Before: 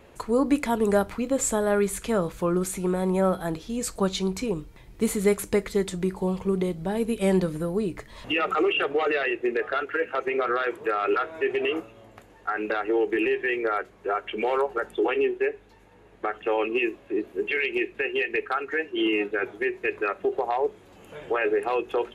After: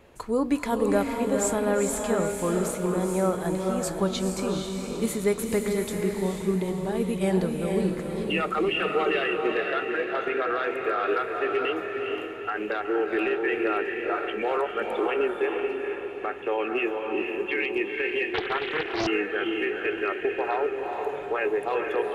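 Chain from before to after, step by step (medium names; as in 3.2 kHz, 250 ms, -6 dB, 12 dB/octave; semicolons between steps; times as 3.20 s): echo that smears into a reverb 462 ms, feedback 46%, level -3 dB; 18.34–19.07 s: loudspeaker Doppler distortion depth 0.82 ms; trim -2.5 dB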